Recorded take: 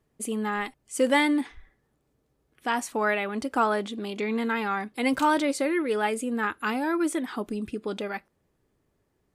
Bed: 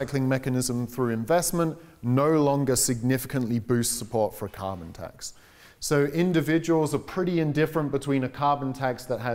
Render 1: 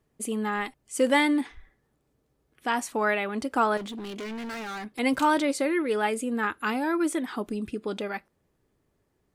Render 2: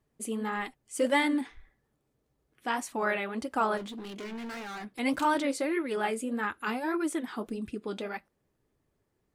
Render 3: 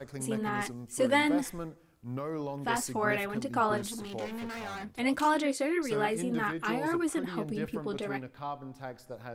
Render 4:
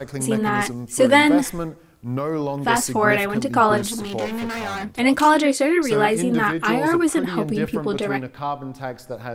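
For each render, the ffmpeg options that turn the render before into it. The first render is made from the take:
ffmpeg -i in.wav -filter_complex "[0:a]asettb=1/sr,asplit=3[link_01][link_02][link_03];[link_01]atrim=end=3.774[link_04];[link_02]atrim=start=3.77:end=4.99,asetpts=PTS-STARTPTS,afade=type=in:duration=0.004:curve=qsin,afade=type=out:start_time=1.216:duration=0.004:curve=qsin,asoftclip=type=hard:threshold=-33.5dB[link_05];[link_03]atrim=start=4.986[link_06];[link_04][link_05]acrossfade=duration=0.004:curve1=hsin:curve2=qsin[link_07];[link_07][link_06]acrossfade=duration=0.004:curve1=qsin:curve2=hsin" out.wav
ffmpeg -i in.wav -af "flanger=delay=1:depth=8.5:regen=-54:speed=1.7:shape=sinusoidal" out.wav
ffmpeg -i in.wav -i bed.wav -filter_complex "[1:a]volume=-14.5dB[link_01];[0:a][link_01]amix=inputs=2:normalize=0" out.wav
ffmpeg -i in.wav -af "volume=11.5dB" out.wav

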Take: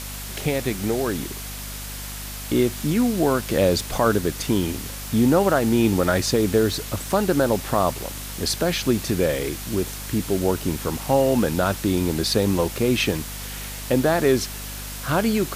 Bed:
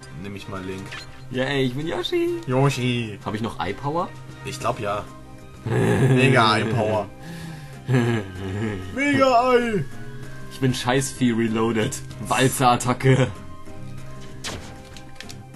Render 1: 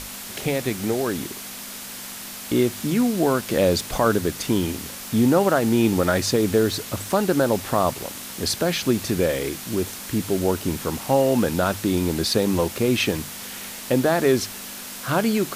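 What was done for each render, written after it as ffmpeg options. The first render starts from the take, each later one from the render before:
ffmpeg -i in.wav -af "bandreject=frequency=50:width_type=h:width=6,bandreject=frequency=100:width_type=h:width=6,bandreject=frequency=150:width_type=h:width=6" out.wav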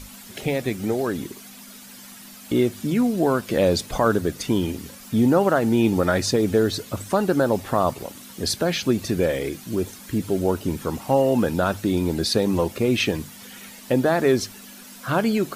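ffmpeg -i in.wav -af "afftdn=noise_reduction=11:noise_floor=-36" out.wav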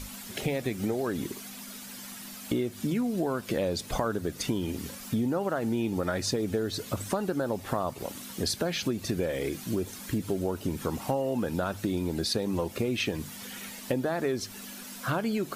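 ffmpeg -i in.wav -af "acompressor=threshold=-26dB:ratio=6" out.wav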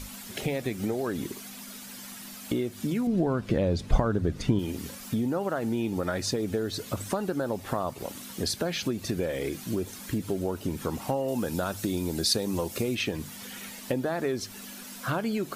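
ffmpeg -i in.wav -filter_complex "[0:a]asettb=1/sr,asplit=3[link_01][link_02][link_03];[link_01]atrim=end=3.074[link_04];[link_02]atrim=start=3.07:end=4.59,asetpts=PTS-STARTPTS,afade=type=in:duration=0.004:curve=qsin,afade=type=out:start_time=1.516:duration=0.004:curve=qsin,aemphasis=mode=reproduction:type=bsi[link_05];[link_03]atrim=start=4.586[link_06];[link_04][link_05]acrossfade=duration=0.004:curve1=hsin:curve2=qsin[link_07];[link_07][link_06]acrossfade=duration=0.004:curve1=qsin:curve2=hsin,asettb=1/sr,asplit=3[link_08][link_09][link_10];[link_08]atrim=end=11.284[link_11];[link_09]atrim=start=11.28:end=12.95,asetpts=PTS-STARTPTS,afade=type=in:duration=0.004:curve=qsin,afade=type=out:start_time=1.666:duration=0.004:curve=qsin,bass=frequency=250:gain=0,treble=frequency=4000:gain=8[link_12];[link_10]atrim=start=12.946[link_13];[link_11][link_12]acrossfade=duration=0.004:curve1=hsin:curve2=qsin[link_14];[link_14][link_13]acrossfade=duration=0.004:curve1=qsin:curve2=hsin" out.wav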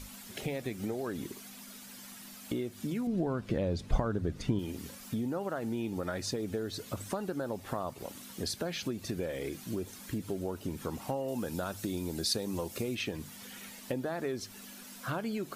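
ffmpeg -i in.wav -af "volume=-6dB" out.wav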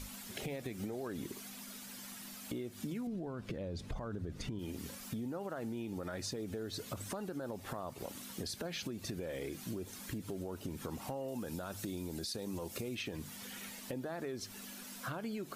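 ffmpeg -i in.wav -af "alimiter=level_in=3dB:limit=-24dB:level=0:latency=1:release=38,volume=-3dB,acompressor=threshold=-37dB:ratio=6" out.wav

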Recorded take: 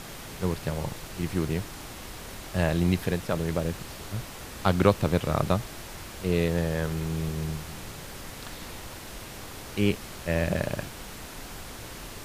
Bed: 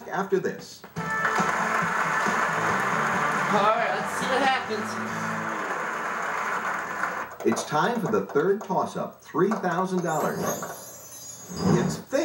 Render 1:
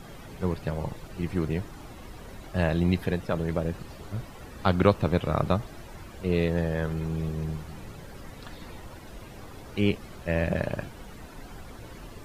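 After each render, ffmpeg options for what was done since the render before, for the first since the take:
ffmpeg -i in.wav -af "afftdn=noise_reduction=12:noise_floor=-42" out.wav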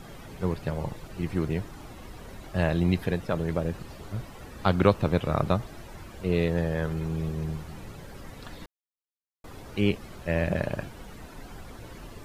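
ffmpeg -i in.wav -filter_complex "[0:a]asplit=3[link_01][link_02][link_03];[link_01]atrim=end=8.66,asetpts=PTS-STARTPTS,afade=type=out:start_time=8.656:duration=0.004:curve=hsin[link_04];[link_02]atrim=start=8.66:end=9.44,asetpts=PTS-STARTPTS,volume=0[link_05];[link_03]atrim=start=9.44,asetpts=PTS-STARTPTS,afade=type=in:duration=0.004:curve=hsin[link_06];[link_04][link_05][link_06]concat=n=3:v=0:a=1" out.wav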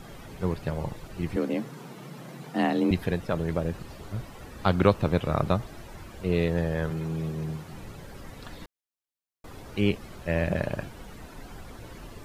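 ffmpeg -i in.wav -filter_complex "[0:a]asettb=1/sr,asplit=3[link_01][link_02][link_03];[link_01]atrim=end=1.364[link_04];[link_02]atrim=start=1.36:end=2.91,asetpts=PTS-STARTPTS,afade=type=in:duration=0.004:curve=qsin,afade=type=out:start_time=1.546:duration=0.004:curve=qsin,afreqshift=120[link_05];[link_03]atrim=start=2.906[link_06];[link_04][link_05]acrossfade=duration=0.004:curve1=hsin:curve2=qsin[link_07];[link_07][link_06]acrossfade=duration=0.004:curve1=qsin:curve2=hsin,asettb=1/sr,asplit=3[link_08][link_09][link_10];[link_08]atrim=end=6.904[link_11];[link_09]atrim=start=6.9:end=7.73,asetpts=PTS-STARTPTS,afade=type=in:duration=0.004:curve=qsin,afade=type=out:start_time=0.826:duration=0.004:curve=qsin,highpass=frequency=95:width=0.5412,highpass=frequency=95:width=1.3066[link_12];[link_10]atrim=start=7.726[link_13];[link_11][link_12]acrossfade=duration=0.004:curve1=hsin:curve2=qsin[link_14];[link_14][link_13]acrossfade=duration=0.004:curve1=qsin:curve2=hsin" out.wav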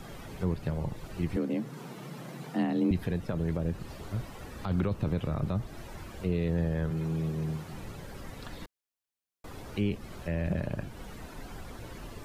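ffmpeg -i in.wav -filter_complex "[0:a]alimiter=limit=-16dB:level=0:latency=1:release=15,acrossover=split=330[link_01][link_02];[link_02]acompressor=threshold=-42dB:ratio=2[link_03];[link_01][link_03]amix=inputs=2:normalize=0" out.wav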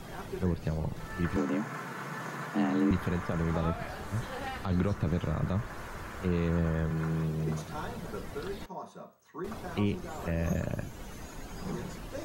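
ffmpeg -i in.wav -i bed.wav -filter_complex "[1:a]volume=-16.5dB[link_01];[0:a][link_01]amix=inputs=2:normalize=0" out.wav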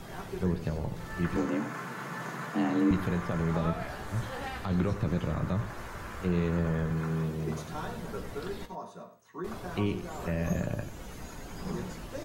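ffmpeg -i in.wav -filter_complex "[0:a]asplit=2[link_01][link_02];[link_02]adelay=17,volume=-10.5dB[link_03];[link_01][link_03]amix=inputs=2:normalize=0,aecho=1:1:92:0.251" out.wav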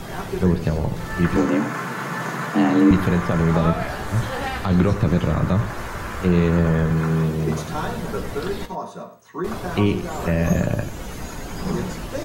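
ffmpeg -i in.wav -af "volume=11dB" out.wav

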